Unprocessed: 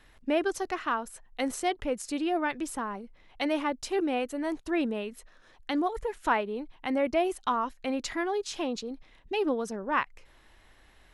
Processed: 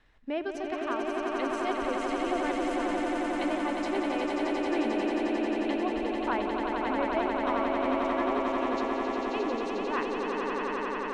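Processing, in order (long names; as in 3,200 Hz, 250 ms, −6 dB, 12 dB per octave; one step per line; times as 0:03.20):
0:07.19–0:08.65: running median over 9 samples
high-frequency loss of the air 93 metres
echo that builds up and dies away 89 ms, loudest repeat 8, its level −5 dB
level −5.5 dB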